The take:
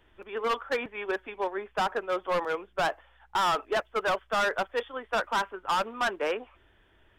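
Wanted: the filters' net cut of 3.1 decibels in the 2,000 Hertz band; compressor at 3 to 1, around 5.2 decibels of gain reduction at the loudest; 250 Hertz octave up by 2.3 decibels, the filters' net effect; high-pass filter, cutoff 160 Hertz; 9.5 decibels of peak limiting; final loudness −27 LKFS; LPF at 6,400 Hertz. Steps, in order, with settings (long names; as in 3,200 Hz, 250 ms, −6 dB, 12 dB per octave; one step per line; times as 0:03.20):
high-pass filter 160 Hz
low-pass filter 6,400 Hz
parametric band 250 Hz +4.5 dB
parametric band 2,000 Hz −4.5 dB
downward compressor 3 to 1, threshold −31 dBFS
level +13.5 dB
brickwall limiter −18.5 dBFS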